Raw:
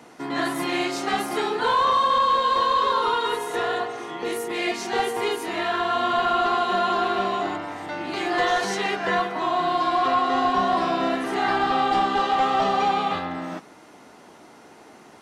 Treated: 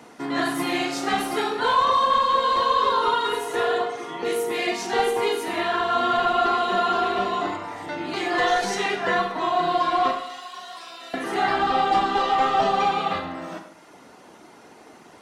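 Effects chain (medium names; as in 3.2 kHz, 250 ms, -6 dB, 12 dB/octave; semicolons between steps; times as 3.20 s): reverb removal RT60 0.66 s; 10.11–11.14 s: differentiator; Schroeder reverb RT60 0.74 s, combs from 32 ms, DRR 5.5 dB; trim +1 dB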